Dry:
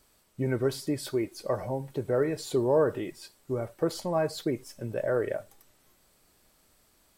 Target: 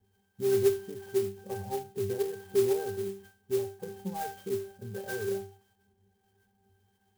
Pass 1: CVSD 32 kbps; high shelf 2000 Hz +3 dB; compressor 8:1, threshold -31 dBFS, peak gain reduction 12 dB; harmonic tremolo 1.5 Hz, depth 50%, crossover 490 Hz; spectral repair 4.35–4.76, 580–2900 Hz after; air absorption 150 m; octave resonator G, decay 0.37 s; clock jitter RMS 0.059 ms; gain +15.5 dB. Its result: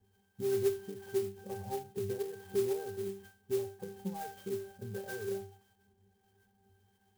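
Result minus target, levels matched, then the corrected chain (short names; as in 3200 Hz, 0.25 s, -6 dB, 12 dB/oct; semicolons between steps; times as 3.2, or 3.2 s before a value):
compressor: peak gain reduction +6.5 dB
CVSD 32 kbps; high shelf 2000 Hz +3 dB; compressor 8:1, threshold -23.5 dBFS, peak gain reduction 5.5 dB; harmonic tremolo 1.5 Hz, depth 50%, crossover 490 Hz; spectral repair 4.35–4.76, 580–2900 Hz after; air absorption 150 m; octave resonator G, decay 0.37 s; clock jitter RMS 0.059 ms; gain +15.5 dB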